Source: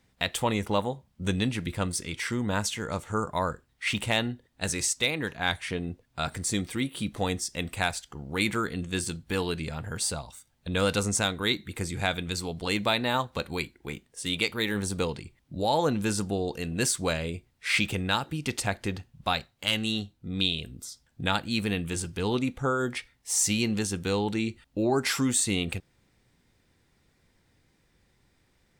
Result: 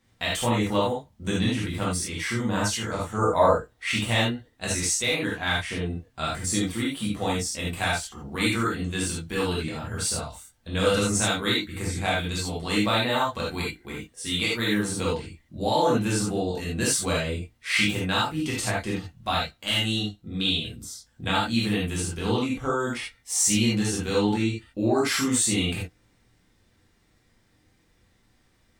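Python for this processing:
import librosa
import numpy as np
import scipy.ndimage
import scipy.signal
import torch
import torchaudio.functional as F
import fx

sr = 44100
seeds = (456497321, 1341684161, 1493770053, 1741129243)

y = fx.peak_eq(x, sr, hz=560.0, db=10.0, octaves=1.5, at=(3.18, 3.85))
y = fx.rev_gated(y, sr, seeds[0], gate_ms=110, shape='flat', drr_db=-6.0)
y = y * 10.0 ** (-4.0 / 20.0)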